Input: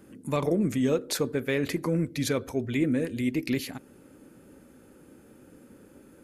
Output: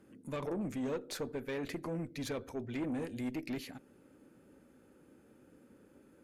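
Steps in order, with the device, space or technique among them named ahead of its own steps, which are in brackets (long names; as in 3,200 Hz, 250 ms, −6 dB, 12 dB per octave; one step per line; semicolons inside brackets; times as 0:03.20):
0:02.86–0:03.36: bass and treble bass +2 dB, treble +5 dB
tube preamp driven hard (tube saturation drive 24 dB, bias 0.4; low-shelf EQ 160 Hz −3 dB; high-shelf EQ 5,900 Hz −7 dB)
level −6.5 dB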